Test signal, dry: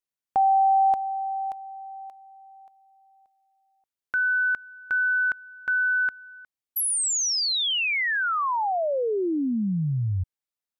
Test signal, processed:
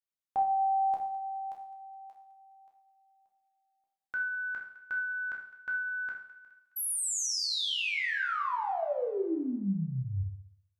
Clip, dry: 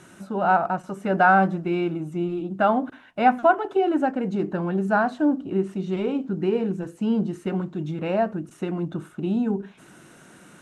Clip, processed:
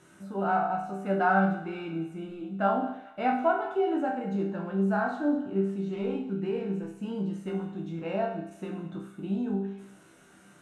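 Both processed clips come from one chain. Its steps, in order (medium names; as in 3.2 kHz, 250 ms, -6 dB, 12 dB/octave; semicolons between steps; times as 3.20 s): chord resonator C2 major, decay 0.62 s; thinning echo 209 ms, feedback 46%, high-pass 600 Hz, level -17.5 dB; trim +7.5 dB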